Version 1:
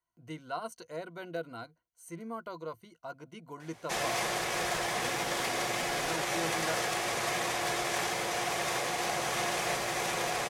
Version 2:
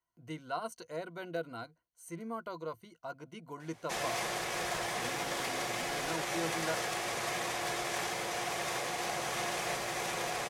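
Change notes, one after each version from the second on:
background -3.5 dB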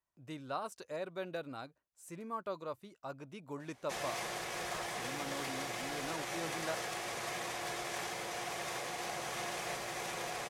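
speech: remove rippled EQ curve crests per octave 1.9, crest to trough 13 dB; background -4.5 dB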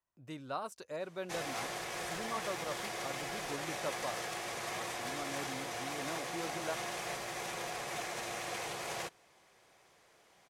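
background: entry -2.60 s

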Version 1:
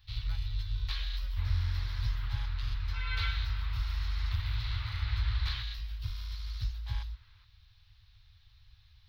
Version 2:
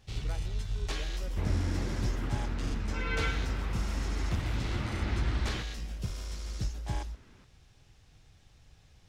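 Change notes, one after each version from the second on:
master: remove FFT filter 110 Hz 0 dB, 160 Hz -27 dB, 310 Hz -29 dB, 720 Hz -18 dB, 1 kHz -5 dB, 2.8 kHz -2 dB, 4.1 kHz +6 dB, 7.7 kHz -25 dB, 16 kHz +6 dB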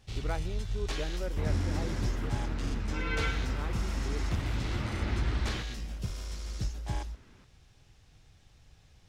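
speech +9.5 dB

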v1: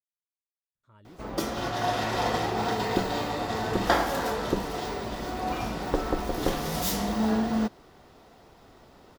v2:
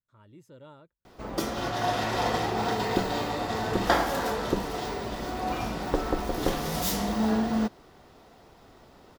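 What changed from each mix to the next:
speech: entry -0.75 s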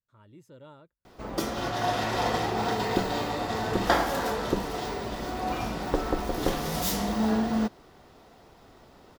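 no change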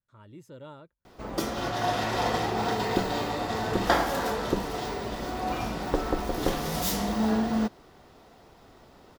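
speech +4.5 dB

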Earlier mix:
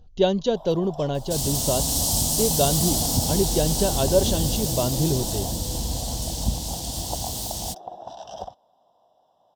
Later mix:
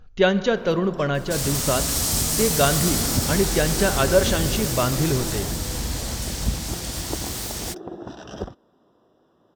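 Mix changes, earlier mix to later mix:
speech: send on; first sound: add resonant low shelf 510 Hz +11.5 dB, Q 3; master: add high-order bell 1.7 kHz +15.5 dB 1.3 oct

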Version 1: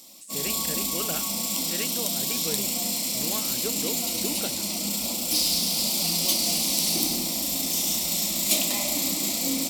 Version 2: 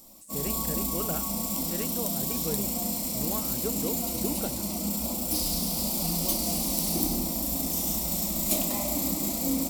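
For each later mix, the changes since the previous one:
master: remove frequency weighting D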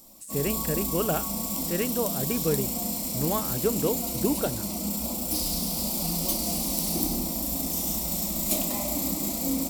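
speech +8.0 dB

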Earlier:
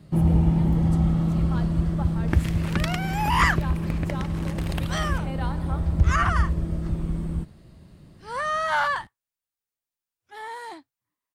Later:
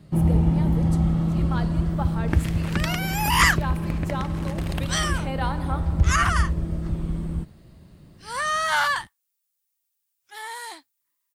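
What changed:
speech +6.0 dB; second sound: add tilt EQ +4 dB/octave

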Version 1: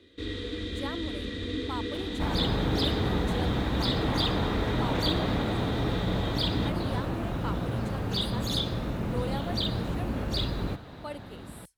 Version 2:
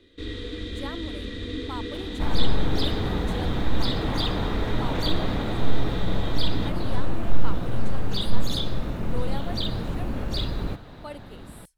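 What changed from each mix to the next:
master: remove high-pass 53 Hz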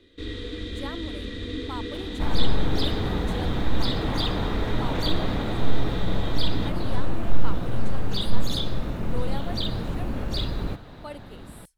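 no change

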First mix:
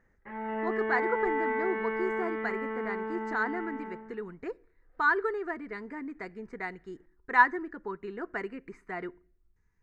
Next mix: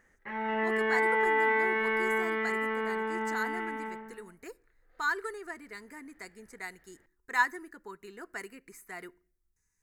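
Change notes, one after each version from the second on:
speech -10.5 dB; master: remove tape spacing loss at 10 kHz 39 dB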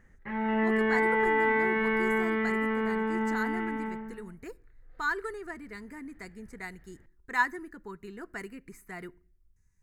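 master: add tone controls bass +14 dB, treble -4 dB

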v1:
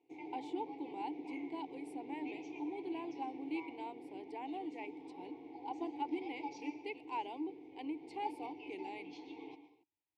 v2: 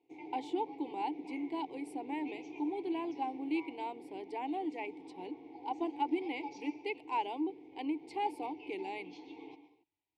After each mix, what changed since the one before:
speech +6.0 dB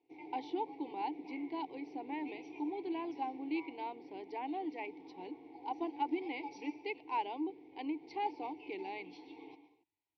master: add rippled Chebyshev low-pass 5.9 kHz, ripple 3 dB

